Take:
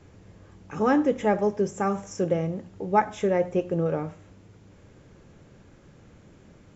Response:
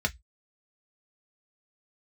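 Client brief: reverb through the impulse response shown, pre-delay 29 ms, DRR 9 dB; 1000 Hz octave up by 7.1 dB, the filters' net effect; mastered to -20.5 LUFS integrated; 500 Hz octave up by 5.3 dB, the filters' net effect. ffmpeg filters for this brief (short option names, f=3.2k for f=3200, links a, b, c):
-filter_complex "[0:a]equalizer=f=500:t=o:g=4.5,equalizer=f=1k:t=o:g=7.5,asplit=2[a][b];[1:a]atrim=start_sample=2205,adelay=29[c];[b][c]afir=irnorm=-1:irlink=0,volume=-17.5dB[d];[a][d]amix=inputs=2:normalize=0"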